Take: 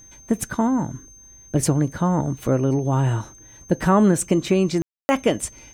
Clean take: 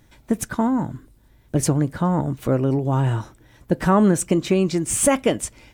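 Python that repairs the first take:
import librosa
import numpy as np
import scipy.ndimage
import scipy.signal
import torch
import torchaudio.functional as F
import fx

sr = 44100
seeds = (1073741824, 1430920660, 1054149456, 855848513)

y = fx.notch(x, sr, hz=6300.0, q=30.0)
y = fx.fix_ambience(y, sr, seeds[0], print_start_s=1.03, print_end_s=1.53, start_s=4.82, end_s=5.09)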